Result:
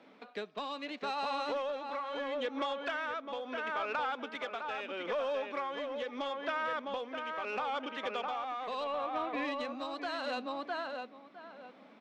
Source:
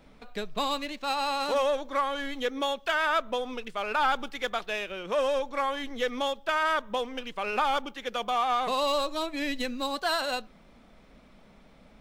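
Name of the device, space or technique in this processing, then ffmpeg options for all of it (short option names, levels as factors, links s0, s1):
AM radio: -filter_complex "[0:a]highpass=f=230:w=0.5412,highpass=f=230:w=1.3066,asettb=1/sr,asplit=3[s0][s1][s2];[s0]atrim=end=8.844[s3];[s1]atrim=start=8.84:end=9.45,asetpts=PTS-STARTPTS,afade=t=in:d=0.004:c=qsin,afade=t=out:st=0.606:d=0.004:c=qsin,highshelf=f=3200:t=q:w=1.5:g=-13[s4];[s2]atrim=start=9.446[s5];[s3][s4]acrossfade=d=0.004:c1=hsin:c2=qsin[s6];[s6][s5]acrossfade=d=0.004:c1=qsin:c2=hsin,highpass=110,lowpass=3900,asplit=2[s7][s8];[s8]adelay=657,lowpass=f=2200:p=1,volume=0.562,asplit=2[s9][s10];[s10]adelay=657,lowpass=f=2200:p=1,volume=0.23,asplit=2[s11][s12];[s12]adelay=657,lowpass=f=2200:p=1,volume=0.23[s13];[s7][s9][s11][s13]amix=inputs=4:normalize=0,acompressor=threshold=0.0316:ratio=6,asoftclip=type=tanh:threshold=0.0596,tremolo=f=0.76:d=0.37"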